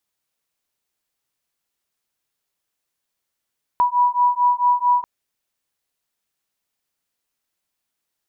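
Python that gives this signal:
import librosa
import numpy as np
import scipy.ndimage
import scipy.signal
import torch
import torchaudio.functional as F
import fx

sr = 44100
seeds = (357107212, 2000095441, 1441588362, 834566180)

y = fx.two_tone_beats(sr, length_s=1.24, hz=976.0, beat_hz=4.5, level_db=-17.5)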